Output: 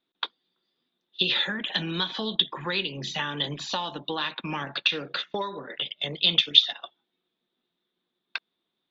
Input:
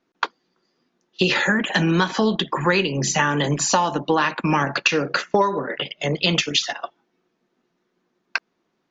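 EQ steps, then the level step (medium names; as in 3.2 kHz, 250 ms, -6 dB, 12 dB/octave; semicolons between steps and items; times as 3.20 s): resonant low-pass 3.6 kHz, resonance Q 12; -13.0 dB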